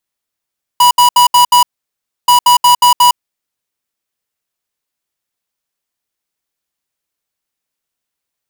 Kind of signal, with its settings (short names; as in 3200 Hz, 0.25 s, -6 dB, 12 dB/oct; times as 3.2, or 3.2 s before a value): beep pattern square 977 Hz, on 0.11 s, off 0.07 s, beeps 5, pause 0.65 s, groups 2, -6.5 dBFS